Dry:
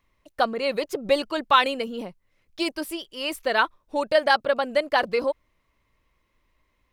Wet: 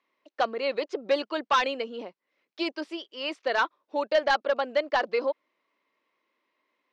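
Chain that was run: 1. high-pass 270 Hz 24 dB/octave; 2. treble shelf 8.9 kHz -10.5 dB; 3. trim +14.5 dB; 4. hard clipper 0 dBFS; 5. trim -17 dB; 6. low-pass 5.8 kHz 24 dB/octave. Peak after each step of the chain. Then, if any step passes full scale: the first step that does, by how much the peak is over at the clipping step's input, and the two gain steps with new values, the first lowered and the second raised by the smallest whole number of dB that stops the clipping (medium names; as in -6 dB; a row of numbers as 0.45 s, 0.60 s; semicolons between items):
-4.5 dBFS, -5.0 dBFS, +9.5 dBFS, 0.0 dBFS, -17.0 dBFS, -15.5 dBFS; step 3, 9.5 dB; step 3 +4.5 dB, step 5 -7 dB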